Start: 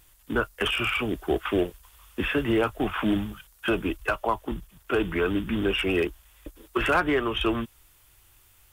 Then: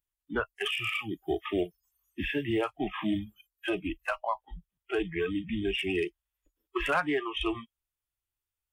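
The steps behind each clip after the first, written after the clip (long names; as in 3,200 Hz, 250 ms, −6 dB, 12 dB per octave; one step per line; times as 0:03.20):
noise reduction from a noise print of the clip's start 29 dB
level −4.5 dB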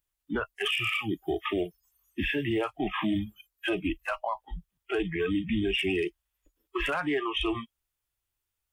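brickwall limiter −26 dBFS, peak gain reduction 10 dB
level +5.5 dB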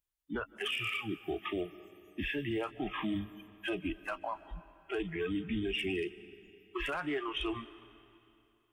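convolution reverb RT60 2.8 s, pre-delay 109 ms, DRR 16.5 dB
level −6.5 dB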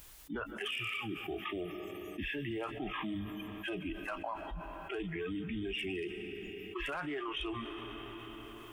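envelope flattener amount 70%
level −5 dB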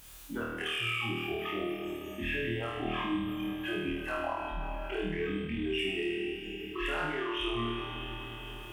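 harmonic generator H 8 −38 dB, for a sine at −26.5 dBFS
flutter between parallel walls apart 4.4 metres, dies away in 0.99 s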